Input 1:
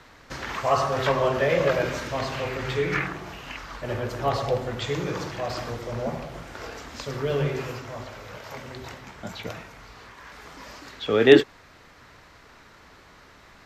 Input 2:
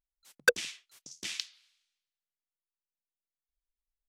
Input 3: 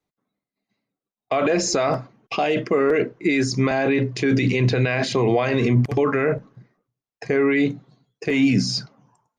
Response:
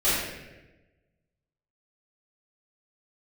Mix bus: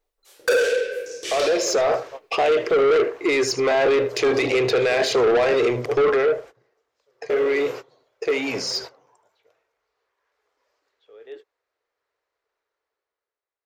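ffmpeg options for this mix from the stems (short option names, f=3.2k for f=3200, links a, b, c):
-filter_complex "[0:a]volume=-14dB[a];[1:a]lowshelf=f=330:g=10,volume=1.5dB,asplit=2[b][c];[c]volume=-5dB[d];[2:a]acontrast=74,volume=-7.5dB,afade=t=out:st=6.06:d=0.43:silence=0.237137,asplit=3[e][f][g];[f]volume=-16dB[h];[g]apad=whole_len=602166[i];[a][i]sidechaingate=range=-31dB:threshold=-46dB:ratio=16:detection=peak[j];[3:a]atrim=start_sample=2205[k];[d][k]afir=irnorm=-1:irlink=0[l];[h]aecho=0:1:76:1[m];[j][b][e][l][m]amix=inputs=5:normalize=0,lowshelf=f=300:t=q:w=3:g=-13.5,dynaudnorm=f=170:g=11:m=13.5dB,asoftclip=type=tanh:threshold=-14.5dB"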